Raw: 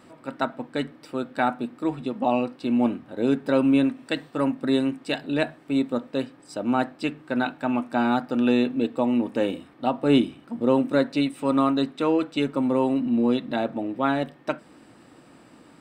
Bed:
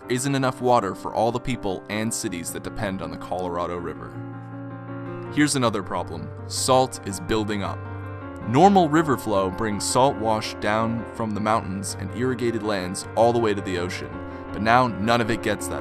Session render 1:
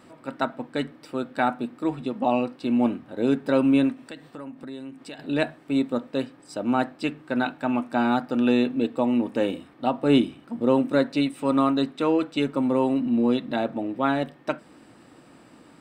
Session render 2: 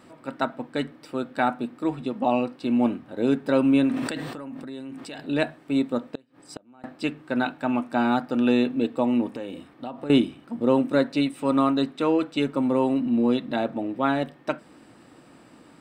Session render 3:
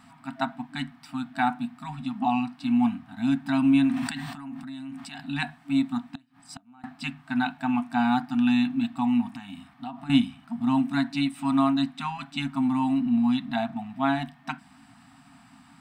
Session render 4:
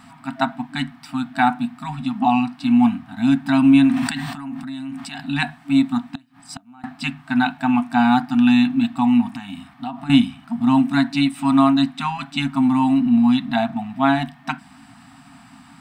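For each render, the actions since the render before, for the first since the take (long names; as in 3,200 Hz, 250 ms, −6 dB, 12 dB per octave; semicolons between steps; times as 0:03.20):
0:03.93–0:05.19: downward compressor 3 to 1, threshold −39 dBFS
0:03.88–0:05.20: level that may fall only so fast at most 25 dB per second; 0:06.15–0:06.84: gate with flip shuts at −22 dBFS, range −30 dB; 0:09.28–0:10.10: downward compressor 4 to 1, threshold −31 dBFS
brick-wall band-stop 290–660 Hz; dynamic equaliser 1,300 Hz, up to −6 dB, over −50 dBFS, Q 7.4
level +7.5 dB; brickwall limiter −2 dBFS, peak gain reduction 2 dB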